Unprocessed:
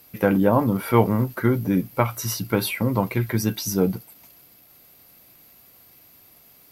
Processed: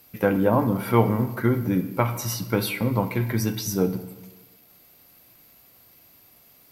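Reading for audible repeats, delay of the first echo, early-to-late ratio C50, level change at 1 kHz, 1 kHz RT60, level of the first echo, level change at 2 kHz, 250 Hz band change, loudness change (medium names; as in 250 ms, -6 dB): no echo, no echo, 11.5 dB, -1.5 dB, 1.1 s, no echo, -1.5 dB, -2.0 dB, -1.5 dB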